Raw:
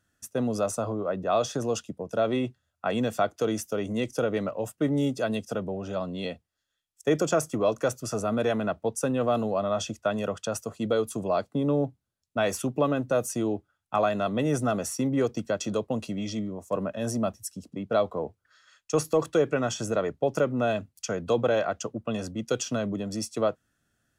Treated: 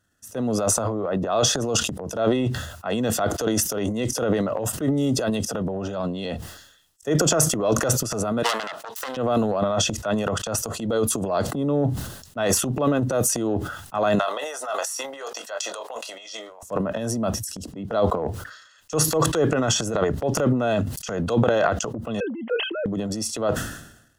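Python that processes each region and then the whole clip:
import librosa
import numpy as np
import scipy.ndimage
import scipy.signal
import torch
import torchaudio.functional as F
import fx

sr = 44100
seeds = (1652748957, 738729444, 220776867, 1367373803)

y = fx.chain(x, sr, fx.self_delay(depth_ms=0.5),
    fx.highpass(hz=1100.0, slope=12), at=(8.43, 9.17))
y = fx.chain(y, sr, fx.highpass(hz=660.0, slope=24),
    fx.doubler(ms=22.0, db=-12), at=(14.19, 16.63))
y = fx.chain(y, sr, fx.sine_speech(),
    fx.steep_highpass(hz=230.0, slope=36), at=(22.2, 22.86))
y = fx.notch(y, sr, hz=2300.0, q=5.1)
y = fx.transient(y, sr, attack_db=-6, sustain_db=12)
y = fx.sustainer(y, sr, db_per_s=69.0)
y = y * librosa.db_to_amplitude(3.0)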